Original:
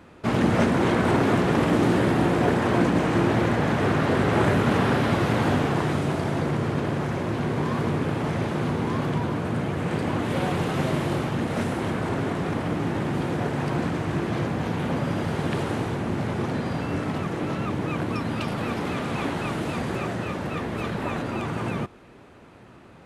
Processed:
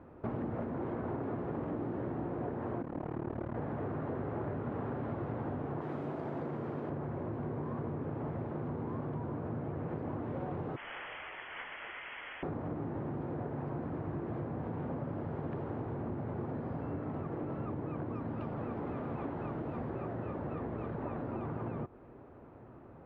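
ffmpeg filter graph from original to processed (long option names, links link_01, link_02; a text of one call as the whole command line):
ffmpeg -i in.wav -filter_complex "[0:a]asettb=1/sr,asplit=3[link_01][link_02][link_03];[link_01]atrim=end=2.824[link_04];[link_02]atrim=start=2.82:end=3.56,asetpts=PTS-STARTPTS,afade=type=in:duration=0.004:curve=qsin,afade=type=out:start_time=0.736:duration=0.004:curve=qsin,tremolo=f=37:d=0.974,asoftclip=type=hard:threshold=-18dB[link_05];[link_03]atrim=start=3.556[link_06];[link_04][link_05]acrossfade=duration=0.004:curve1=hsin:curve2=qsin[link_07];[link_07][link_06]acrossfade=duration=0.004:curve1=qsin:curve2=hsin,asettb=1/sr,asplit=3[link_08][link_09][link_10];[link_08]atrim=end=5.814[link_11];[link_09]atrim=start=5.81:end=6.9,asetpts=PTS-STARTPTS,afade=type=in:duration=0.004:curve=qsin,afade=type=out:start_time=1.086:duration=0.004:curve=qsin,highpass=160,aemphasis=mode=production:type=75fm[link_12];[link_10]atrim=start=6.896[link_13];[link_11][link_12]acrossfade=duration=0.004:curve1=hsin:curve2=qsin[link_14];[link_14][link_13]acrossfade=duration=0.004:curve1=qsin:curve2=hsin,asettb=1/sr,asplit=3[link_15][link_16][link_17];[link_15]atrim=end=10.764[link_18];[link_16]atrim=start=10.76:end=12.43,asetpts=PTS-STARTPTS,afade=type=in:duration=0.004:curve=qsin,afade=type=out:start_time=1.666:duration=0.004:curve=qsin,highpass=570,equalizer=frequency=1600:width=1.6:gain=8,lowpass=frequency=3100:width_type=q:width=0.5098,lowpass=frequency=3100:width_type=q:width=0.6013,lowpass=frequency=3100:width_type=q:width=0.9,lowpass=frequency=3100:width_type=q:width=2.563,afreqshift=-3600[link_19];[link_17]atrim=start=12.426[link_20];[link_18][link_19]acrossfade=duration=0.004:curve1=hsin:curve2=qsin[link_21];[link_21][link_20]acrossfade=duration=0.004:curve1=qsin:curve2=hsin,lowpass=1000,equalizer=frequency=190:width_type=o:width=0.21:gain=-8.5,acompressor=threshold=-32dB:ratio=6,volume=-3dB" out.wav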